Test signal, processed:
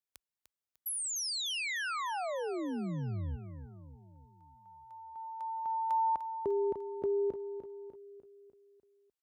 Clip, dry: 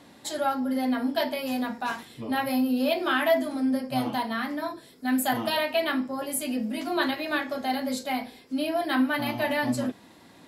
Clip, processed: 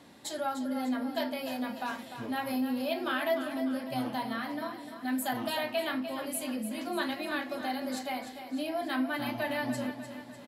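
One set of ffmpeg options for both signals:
ffmpeg -i in.wav -filter_complex "[0:a]highpass=frequency=41:width=0.5412,highpass=frequency=41:width=1.3066,asplit=2[link_01][link_02];[link_02]acompressor=threshold=-34dB:ratio=6,volume=0dB[link_03];[link_01][link_03]amix=inputs=2:normalize=0,aecho=1:1:299|598|897|1196|1495|1794:0.316|0.164|0.0855|0.0445|0.0231|0.012,volume=-9dB" out.wav

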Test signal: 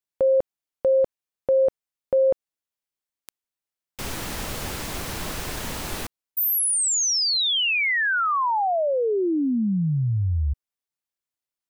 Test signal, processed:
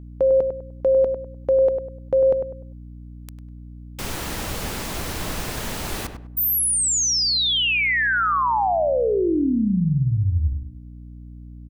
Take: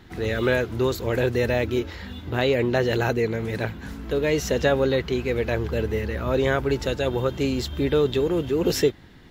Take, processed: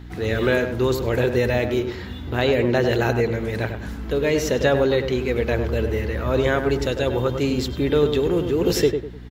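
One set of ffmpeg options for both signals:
ffmpeg -i in.wav -filter_complex "[0:a]asplit=2[link_01][link_02];[link_02]adelay=100,lowpass=frequency=1600:poles=1,volume=-6.5dB,asplit=2[link_03][link_04];[link_04]adelay=100,lowpass=frequency=1600:poles=1,volume=0.31,asplit=2[link_05][link_06];[link_06]adelay=100,lowpass=frequency=1600:poles=1,volume=0.31,asplit=2[link_07][link_08];[link_08]adelay=100,lowpass=frequency=1600:poles=1,volume=0.31[link_09];[link_01][link_03][link_05][link_07][link_09]amix=inputs=5:normalize=0,aeval=exprs='val(0)+0.0112*(sin(2*PI*60*n/s)+sin(2*PI*2*60*n/s)/2+sin(2*PI*3*60*n/s)/3+sin(2*PI*4*60*n/s)/4+sin(2*PI*5*60*n/s)/5)':channel_layout=same,volume=1.5dB" out.wav

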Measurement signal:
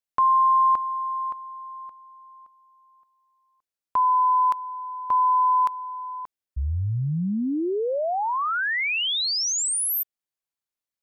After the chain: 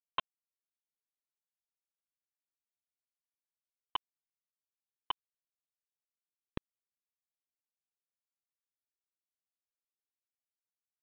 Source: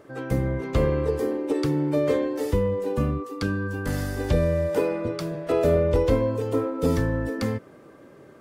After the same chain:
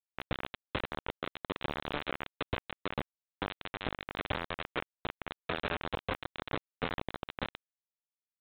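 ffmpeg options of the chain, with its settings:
ffmpeg -i in.wav -af "acompressor=threshold=-24dB:ratio=12:attack=4.5:release=391:knee=1:detection=rms,aresample=8000,acrusher=bits=3:mix=0:aa=0.000001,aresample=44100,volume=-5dB" out.wav

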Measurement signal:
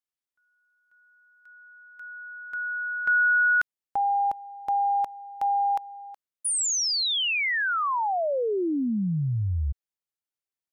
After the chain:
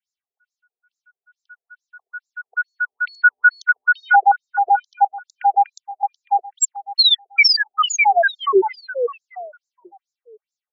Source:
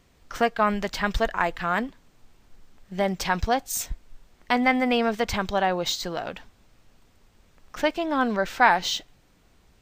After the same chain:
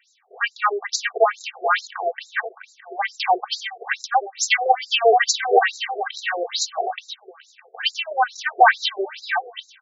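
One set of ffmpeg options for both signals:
ffmpeg -i in.wav -filter_complex "[0:a]acrossover=split=300[link_01][link_02];[link_01]aeval=exprs='(mod(9.44*val(0)+1,2)-1)/9.44':channel_layout=same[link_03];[link_03][link_02]amix=inputs=2:normalize=0,aresample=22050,aresample=44100,equalizer=frequency=1000:width_type=o:width=1:gain=-5,equalizer=frequency=4000:width_type=o:width=1:gain=-5,equalizer=frequency=8000:width_type=o:width=1:gain=7,dynaudnorm=framelen=160:gausssize=21:maxgain=5dB,equalizer=frequency=520:width_type=o:width=0.61:gain=-3,aecho=1:1:2.6:0.8,aecho=1:1:614|1228|1842:0.631|0.126|0.0252,acontrast=24,highpass=frequency=230:width=0.5412,highpass=frequency=230:width=1.3066,afftfilt=real='re*between(b*sr/1024,490*pow(5400/490,0.5+0.5*sin(2*PI*2.3*pts/sr))/1.41,490*pow(5400/490,0.5+0.5*sin(2*PI*2.3*pts/sr))*1.41)':imag='im*between(b*sr/1024,490*pow(5400/490,0.5+0.5*sin(2*PI*2.3*pts/sr))/1.41,490*pow(5400/490,0.5+0.5*sin(2*PI*2.3*pts/sr))*1.41)':win_size=1024:overlap=0.75,volume=4.5dB" out.wav

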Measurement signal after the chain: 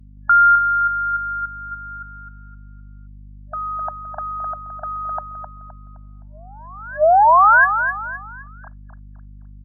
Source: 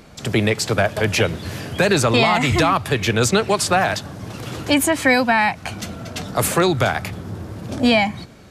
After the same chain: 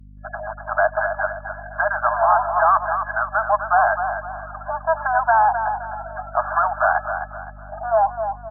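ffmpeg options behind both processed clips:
ffmpeg -i in.wav -filter_complex "[0:a]asplit=2[link_01][link_02];[link_02]acrusher=bits=5:mix=0:aa=0.000001,volume=-10.5dB[link_03];[link_01][link_03]amix=inputs=2:normalize=0,aemphasis=mode=production:type=75kf,afftfilt=real='re*gte(hypot(re,im),0.0631)':imag='im*gte(hypot(re,im),0.0631)':win_size=1024:overlap=0.75,equalizer=frequency=1000:width_type=o:width=2.6:gain=14.5,dynaudnorm=framelen=160:gausssize=13:maxgain=7dB,asoftclip=type=tanh:threshold=-9.5dB,afftfilt=real='re*between(b*sr/4096,600,1700)':imag='im*between(b*sr/4096,600,1700)':win_size=4096:overlap=0.75,aeval=exprs='val(0)+0.00794*(sin(2*PI*50*n/s)+sin(2*PI*2*50*n/s)/2+sin(2*PI*3*50*n/s)/3+sin(2*PI*4*50*n/s)/4+sin(2*PI*5*50*n/s)/5)':channel_layout=same,aecho=1:1:259|518|777|1036:0.398|0.143|0.0516|0.0186" -ar 48000 -c:a libopus -b:a 64k out.opus

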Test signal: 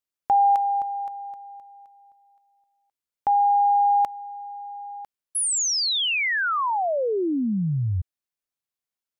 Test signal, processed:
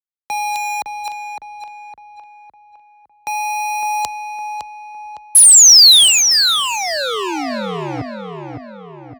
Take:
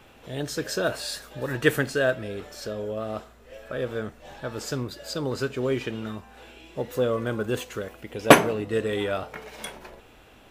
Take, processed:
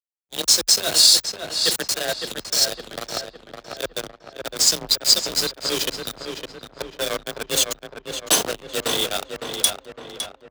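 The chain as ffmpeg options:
ffmpeg -i in.wav -filter_complex "[0:a]acrossover=split=490|2100[link_01][link_02][link_03];[link_03]adynamicsmooth=sensitivity=6.5:basefreq=6300[link_04];[link_01][link_02][link_04]amix=inputs=3:normalize=0,bass=frequency=250:gain=-5,treble=frequency=4000:gain=-6,areverse,acompressor=threshold=-30dB:ratio=6:attack=11:release=944:knee=6:detection=peak,areverse,aexciter=amount=13.3:drive=8.2:freq=3400,acrusher=bits=4:mix=0:aa=0.000001,anlmdn=25.1,afreqshift=32,asplit=2[link_05][link_06];[link_06]adelay=559,lowpass=frequency=2600:poles=1,volume=-5.5dB,asplit=2[link_07][link_08];[link_08]adelay=559,lowpass=frequency=2600:poles=1,volume=0.5,asplit=2[link_09][link_10];[link_10]adelay=559,lowpass=frequency=2600:poles=1,volume=0.5,asplit=2[link_11][link_12];[link_12]adelay=559,lowpass=frequency=2600:poles=1,volume=0.5,asplit=2[link_13][link_14];[link_14]adelay=559,lowpass=frequency=2600:poles=1,volume=0.5,asplit=2[link_15][link_16];[link_16]adelay=559,lowpass=frequency=2600:poles=1,volume=0.5[link_17];[link_05][link_07][link_09][link_11][link_13][link_15][link_17]amix=inputs=7:normalize=0,alimiter=level_in=7.5dB:limit=-1dB:release=50:level=0:latency=1,volume=-1dB" out.wav

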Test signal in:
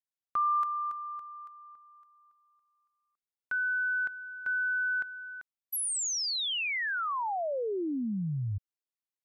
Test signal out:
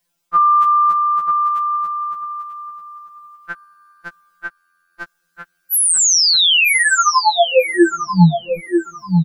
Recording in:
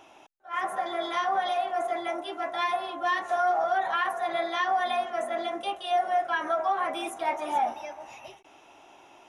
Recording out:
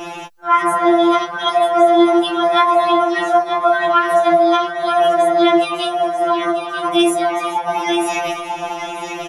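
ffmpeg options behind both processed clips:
ffmpeg -i in.wav -af "lowshelf=frequency=300:gain=7,areverse,acompressor=threshold=-33dB:ratio=12:attack=1.1:release=92:knee=6:detection=rms,areverse,aecho=1:1:941|1882|2823:0.422|0.0801|0.0152,alimiter=level_in=31dB:limit=-1dB:release=50:level=0:latency=1,afftfilt=real='re*2.83*eq(mod(b,8),0)':imag='im*2.83*eq(mod(b,8),0)':win_size=2048:overlap=0.75,volume=-5.5dB" out.wav

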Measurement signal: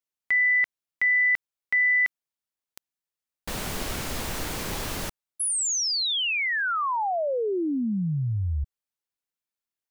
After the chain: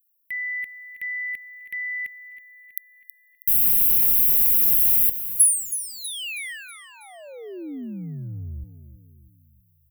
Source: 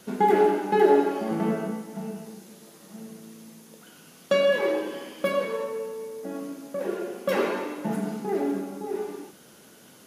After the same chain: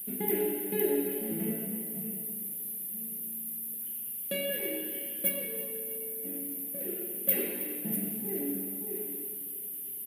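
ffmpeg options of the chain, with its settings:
ffmpeg -i in.wav -filter_complex "[0:a]firequalizer=gain_entry='entry(290,0);entry(1100,-23);entry(1900,-1);entry(2800,2);entry(5800,-14);entry(12000,8)':delay=0.05:min_phase=1,aexciter=amount=6.2:drive=9.2:freq=8900,asplit=2[link_01][link_02];[link_02]aecho=0:1:322|644|966|1288|1610:0.237|0.116|0.0569|0.0279|0.0137[link_03];[link_01][link_03]amix=inputs=2:normalize=0,volume=-7dB" out.wav

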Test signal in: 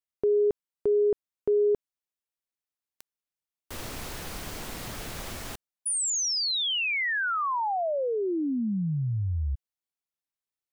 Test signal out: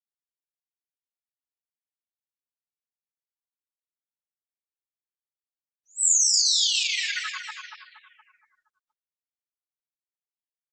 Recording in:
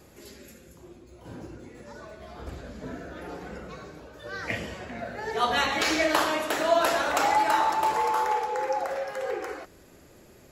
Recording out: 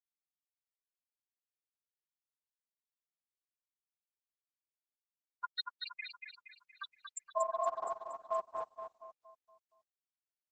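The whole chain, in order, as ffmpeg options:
ffmpeg -i in.wav -filter_complex "[0:a]bandreject=frequency=60:width_type=h:width=6,bandreject=frequency=120:width_type=h:width=6,bandreject=frequency=180:width_type=h:width=6,bandreject=frequency=240:width_type=h:width=6,bandreject=frequency=300:width_type=h:width=6,bandreject=frequency=360:width_type=h:width=6,bandreject=frequency=420:width_type=h:width=6,acrossover=split=150|5500[link_01][link_02][link_03];[link_01]acompressor=threshold=-47dB:ratio=6:attack=25:release=110:knee=2.83:detection=peak[link_04];[link_04][link_02][link_03]amix=inputs=3:normalize=0,afftfilt=real='re*gte(hypot(re,im),0.0178)':imag='im*gte(hypot(re,im),0.0178)':win_size=1024:overlap=0.75,aderivative,acontrast=57,lowshelf=frequency=480:gain=-2,asplit=2[link_05][link_06];[link_06]adelay=42,volume=-4dB[link_07];[link_05][link_07]amix=inputs=2:normalize=0,flanger=delay=3.6:depth=3.8:regen=31:speed=0.26:shape=sinusoidal,afftfilt=real='re*gte(hypot(re,im),0.158)':imag='im*gte(hypot(re,im),0.158)':win_size=1024:overlap=0.75,aecho=1:1:235|470|705|940|1175|1410:0.562|0.259|0.119|0.0547|0.0252|0.0116,aeval=exprs='val(0)*sin(2*PI*200*n/s)':channel_layout=same,volume=9dB" -ar 48000 -c:a libopus -b:a 12k out.opus

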